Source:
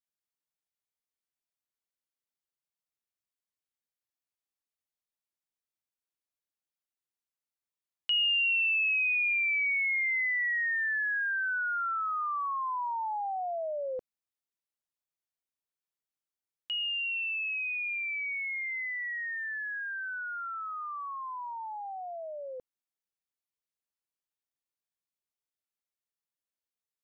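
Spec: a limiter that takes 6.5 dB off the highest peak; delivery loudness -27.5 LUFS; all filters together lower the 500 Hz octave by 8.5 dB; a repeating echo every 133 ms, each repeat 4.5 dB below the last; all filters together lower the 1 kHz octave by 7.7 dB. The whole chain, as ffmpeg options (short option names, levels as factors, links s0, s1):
-af "equalizer=f=500:t=o:g=-7.5,equalizer=f=1000:t=o:g=-8.5,alimiter=level_in=2:limit=0.0631:level=0:latency=1,volume=0.501,aecho=1:1:133|266|399|532|665|798|931|1064|1197:0.596|0.357|0.214|0.129|0.0772|0.0463|0.0278|0.0167|0.01,volume=1.5"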